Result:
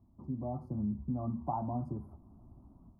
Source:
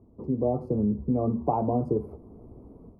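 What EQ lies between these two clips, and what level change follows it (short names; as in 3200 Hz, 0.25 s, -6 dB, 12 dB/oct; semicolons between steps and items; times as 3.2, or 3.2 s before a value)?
fixed phaser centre 1100 Hz, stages 4; -6.0 dB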